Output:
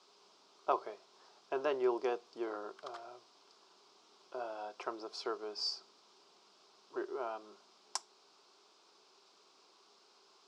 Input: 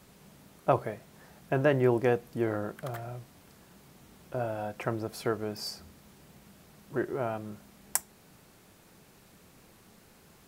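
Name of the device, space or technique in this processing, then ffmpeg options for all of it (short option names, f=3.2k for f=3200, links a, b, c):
phone speaker on a table: -af "highpass=f=390:w=0.5412,highpass=f=390:w=1.3066,equalizer=f=400:t=q:w=4:g=10,equalizer=f=870:t=q:w=4:g=-4,equalizer=f=1.8k:t=q:w=4:g=-8,equalizer=f=5.1k:t=q:w=4:g=6,lowpass=f=6.4k:w=0.5412,lowpass=f=6.4k:w=1.3066,equalizer=f=125:t=o:w=1:g=7,equalizer=f=500:t=o:w=1:g=-10,equalizer=f=1k:t=o:w=1:g=9,equalizer=f=2k:t=o:w=1:g=-6,equalizer=f=4k:t=o:w=1:g=5,volume=-5.5dB"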